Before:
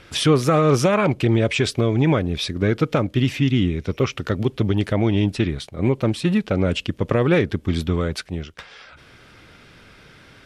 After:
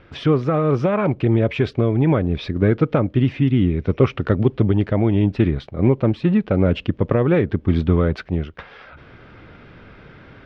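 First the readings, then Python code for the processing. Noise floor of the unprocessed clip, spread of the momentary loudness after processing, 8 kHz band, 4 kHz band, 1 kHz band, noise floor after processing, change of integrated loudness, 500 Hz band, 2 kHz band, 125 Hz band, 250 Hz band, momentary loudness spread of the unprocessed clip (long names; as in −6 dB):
−49 dBFS, 3 LU, below −20 dB, −9.0 dB, −1.5 dB, −46 dBFS, +1.5 dB, +1.0 dB, −3.5 dB, +2.5 dB, +2.0 dB, 7 LU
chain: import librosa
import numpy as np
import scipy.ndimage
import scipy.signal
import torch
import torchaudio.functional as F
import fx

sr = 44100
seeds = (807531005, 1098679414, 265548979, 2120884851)

y = fx.high_shelf(x, sr, hz=2500.0, db=-9.5)
y = fx.rider(y, sr, range_db=4, speed_s=0.5)
y = fx.air_absorb(y, sr, metres=230.0)
y = F.gain(torch.from_numpy(y), 2.5).numpy()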